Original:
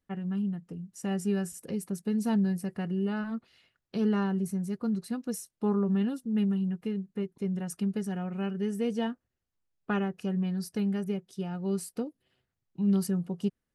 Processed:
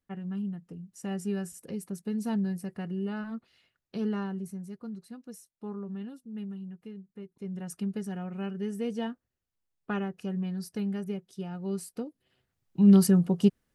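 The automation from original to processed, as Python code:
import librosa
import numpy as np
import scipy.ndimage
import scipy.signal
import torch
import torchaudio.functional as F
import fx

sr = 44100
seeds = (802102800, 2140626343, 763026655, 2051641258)

y = fx.gain(x, sr, db=fx.line((3.95, -3.0), (5.06, -11.0), (7.21, -11.0), (7.69, -2.5), (12.05, -2.5), (12.84, 8.0)))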